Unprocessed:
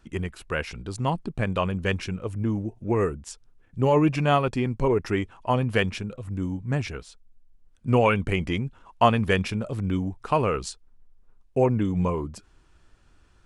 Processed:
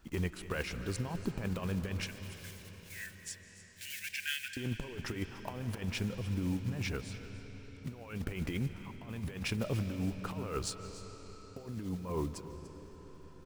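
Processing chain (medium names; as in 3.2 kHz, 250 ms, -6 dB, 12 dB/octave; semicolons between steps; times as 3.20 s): block-companded coder 5-bit; 2.05–4.57 s: Chebyshev high-pass 1.5 kHz, order 10; compressor with a negative ratio -28 dBFS, ratio -0.5; delay 292 ms -16 dB; reverberation RT60 5.5 s, pre-delay 110 ms, DRR 9 dB; trim -7.5 dB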